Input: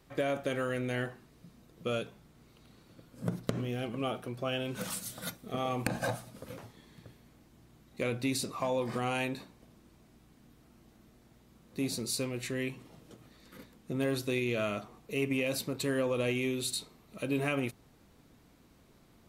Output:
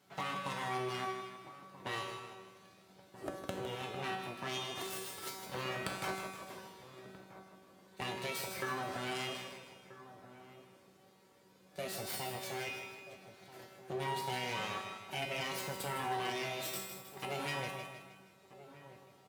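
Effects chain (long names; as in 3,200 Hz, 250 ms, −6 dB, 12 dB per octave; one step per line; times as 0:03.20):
high-shelf EQ 9,400 Hz −4.5 dB
full-wave rectification
high-pass filter 100 Hz 24 dB per octave
tuned comb filter 190 Hz, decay 0.76 s, harmonics all, mix 90%
on a send: repeating echo 157 ms, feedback 47%, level −9 dB
on the sum: flanger 0.33 Hz, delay 1.3 ms, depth 1.8 ms, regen +67%
in parallel at +2 dB: downward compressor, threshold −57 dBFS, peak gain reduction 8 dB
on the sum: slap from a distant wall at 220 metres, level −14 dB
level +12.5 dB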